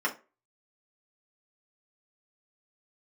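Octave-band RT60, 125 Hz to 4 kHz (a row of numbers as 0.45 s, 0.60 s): 0.25 s, 0.30 s, 0.35 s, 0.30 s, 0.30 s, 0.20 s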